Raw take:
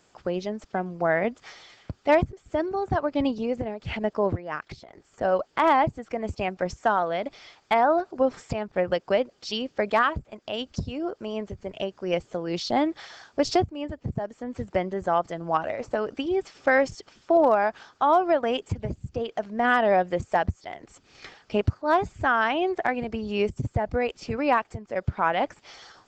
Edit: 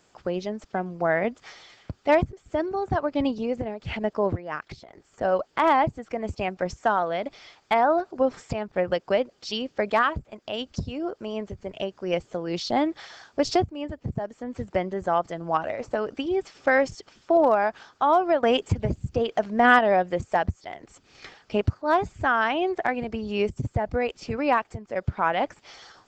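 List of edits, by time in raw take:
18.43–19.79 s: gain +5 dB

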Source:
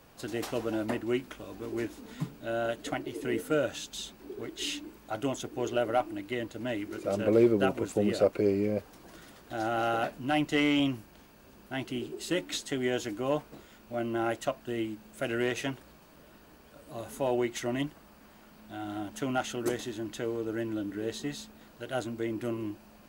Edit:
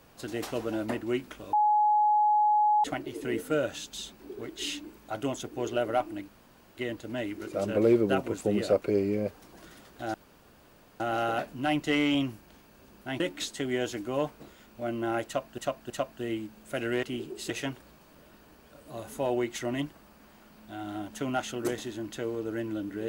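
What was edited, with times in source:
1.53–2.84 s: bleep 842 Hz -20 dBFS
6.28 s: insert room tone 0.49 s
9.65 s: insert room tone 0.86 s
11.85–12.32 s: move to 15.51 s
14.38–14.70 s: loop, 3 plays

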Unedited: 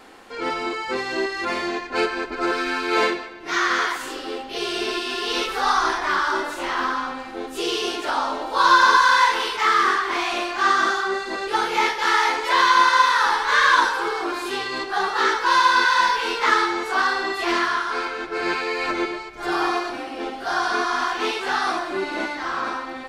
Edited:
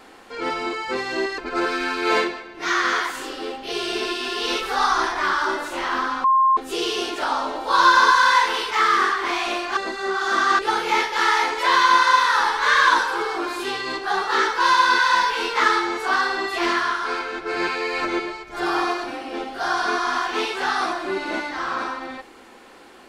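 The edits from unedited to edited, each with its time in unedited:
1.38–2.24 s: delete
7.10–7.43 s: bleep 1.06 kHz -13 dBFS
10.63–11.45 s: reverse

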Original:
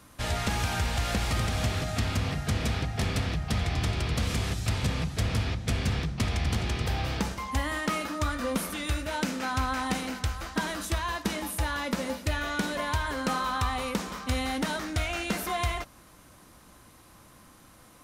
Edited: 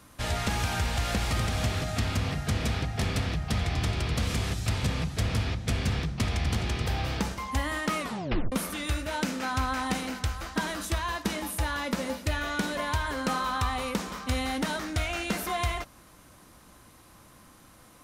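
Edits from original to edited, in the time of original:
7.99 s: tape stop 0.53 s

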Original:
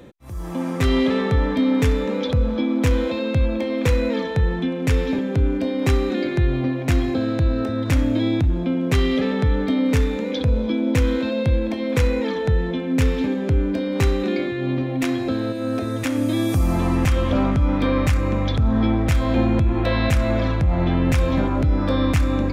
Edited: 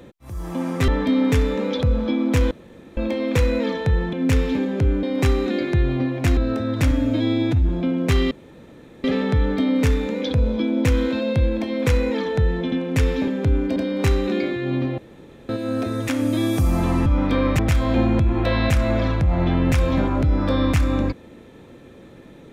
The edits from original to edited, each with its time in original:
0.88–1.38 s: delete
3.01–3.47 s: room tone
4.63–5.67 s: swap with 12.82–13.72 s
7.01–7.46 s: delete
8.00–8.52 s: stretch 1.5×
9.14 s: insert room tone 0.73 s
14.94–15.45 s: room tone
17.02–17.57 s: delete
18.10–18.99 s: delete

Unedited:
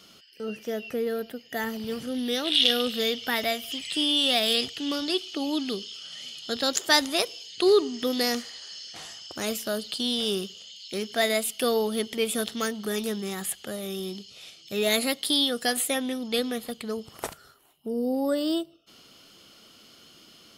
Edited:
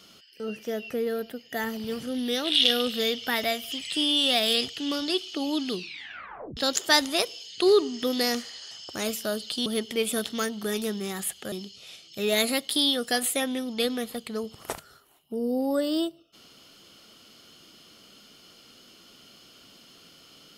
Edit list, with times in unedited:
5.72 s: tape stop 0.85 s
8.71–9.13 s: delete
10.08–11.88 s: delete
13.74–14.06 s: delete

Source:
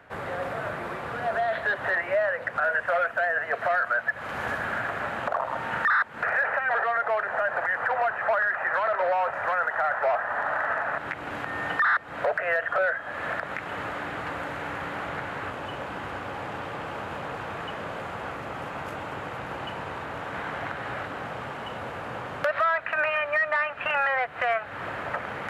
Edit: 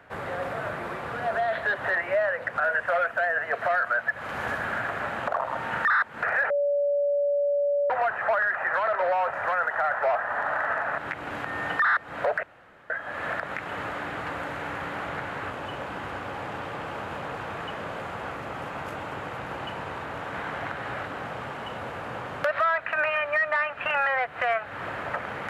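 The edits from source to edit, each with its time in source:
6.50–7.90 s: bleep 573 Hz -21 dBFS
12.43–12.90 s: room tone

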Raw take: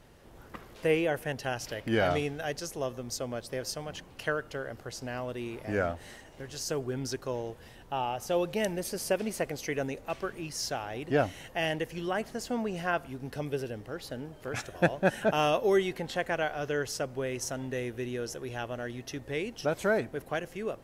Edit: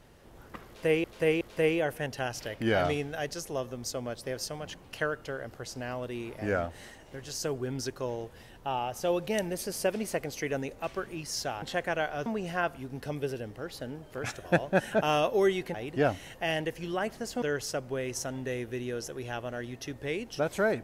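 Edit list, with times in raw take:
0.67–1.04 s: loop, 3 plays
10.88–12.56 s: swap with 16.04–16.68 s

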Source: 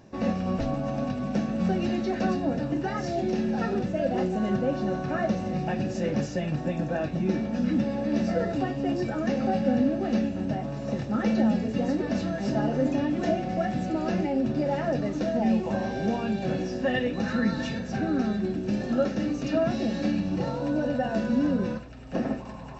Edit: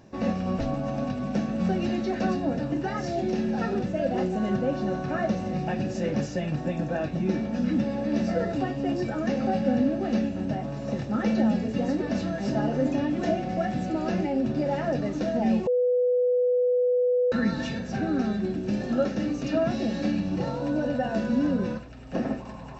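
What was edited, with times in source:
15.67–17.32 s: bleep 495 Hz -19.5 dBFS

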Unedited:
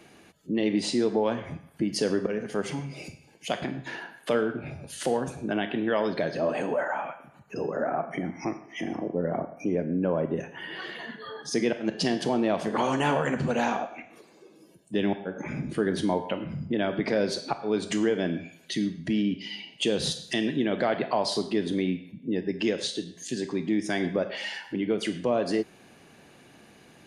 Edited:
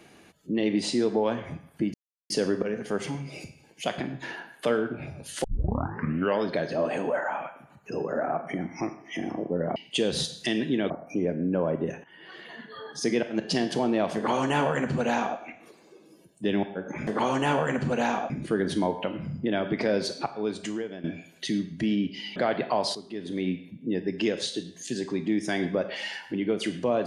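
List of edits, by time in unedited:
1.94 s: insert silence 0.36 s
5.08 s: tape start 0.95 s
10.54–11.48 s: fade in, from -18 dB
12.65–13.88 s: copy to 15.57 s
17.44–18.31 s: fade out, to -15.5 dB
19.63–20.77 s: move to 9.40 s
21.36–21.92 s: fade in quadratic, from -13 dB

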